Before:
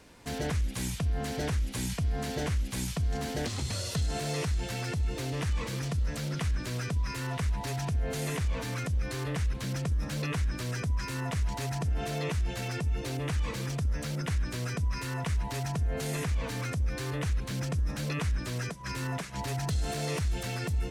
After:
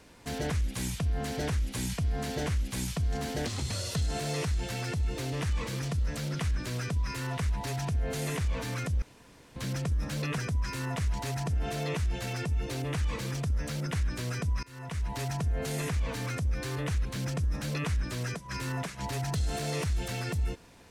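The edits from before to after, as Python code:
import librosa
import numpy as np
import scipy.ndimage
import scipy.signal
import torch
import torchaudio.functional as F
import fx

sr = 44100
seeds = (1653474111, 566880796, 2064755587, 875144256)

y = fx.edit(x, sr, fx.room_tone_fill(start_s=9.02, length_s=0.54),
    fx.cut(start_s=10.38, length_s=0.35),
    fx.fade_in_from(start_s=14.98, length_s=0.54, floor_db=-23.5), tone=tone)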